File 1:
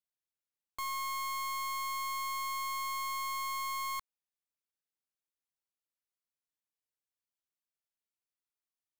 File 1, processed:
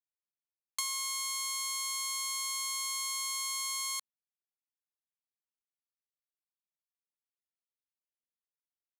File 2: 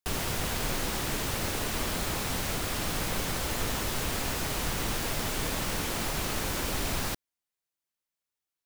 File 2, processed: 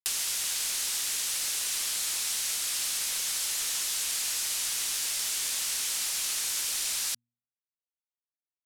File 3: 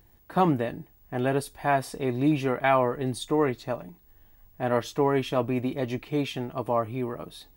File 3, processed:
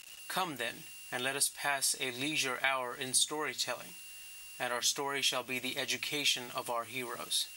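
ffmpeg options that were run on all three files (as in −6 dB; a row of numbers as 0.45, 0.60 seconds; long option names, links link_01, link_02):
-af "lowshelf=frequency=210:gain=-9,crystalizer=i=8:c=0,aeval=exprs='val(0)*gte(abs(val(0)),0.00891)':channel_layout=same,acompressor=threshold=-28dB:ratio=3,lowpass=9100,tiltshelf=frequency=1200:gain=-6,bandreject=frequency=119:width_type=h:width=4,bandreject=frequency=238:width_type=h:width=4,volume=-3.5dB"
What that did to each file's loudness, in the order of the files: +3.0, +3.0, −5.5 LU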